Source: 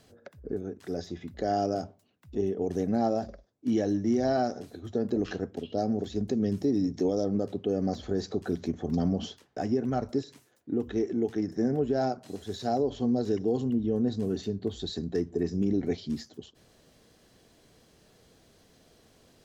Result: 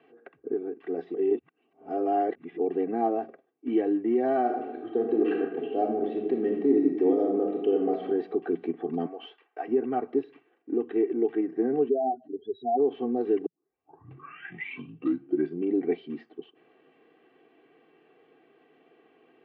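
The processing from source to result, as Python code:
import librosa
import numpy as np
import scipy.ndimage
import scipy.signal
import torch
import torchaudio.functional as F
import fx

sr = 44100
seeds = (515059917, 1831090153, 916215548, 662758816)

y = fx.reverb_throw(x, sr, start_s=4.39, length_s=3.64, rt60_s=1.0, drr_db=1.5)
y = fx.highpass(y, sr, hz=660.0, slope=12, at=(9.06, 9.68))
y = fx.spec_expand(y, sr, power=3.0, at=(11.88, 12.78), fade=0.02)
y = fx.edit(y, sr, fx.reverse_span(start_s=1.14, length_s=1.44),
    fx.tape_start(start_s=13.46, length_s=2.24), tone=tone)
y = scipy.signal.sosfilt(scipy.signal.cheby1(4, 1.0, [170.0, 2800.0], 'bandpass', fs=sr, output='sos'), y)
y = fx.notch(y, sr, hz=1500.0, q=19.0)
y = y + 0.87 * np.pad(y, (int(2.6 * sr / 1000.0), 0))[:len(y)]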